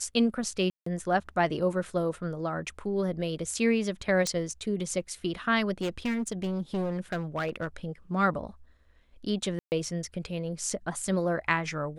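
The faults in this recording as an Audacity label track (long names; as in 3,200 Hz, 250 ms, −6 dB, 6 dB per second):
0.700000	0.860000	drop-out 164 ms
4.270000	4.270000	click −16 dBFS
5.810000	7.760000	clipping −26 dBFS
9.590000	9.720000	drop-out 129 ms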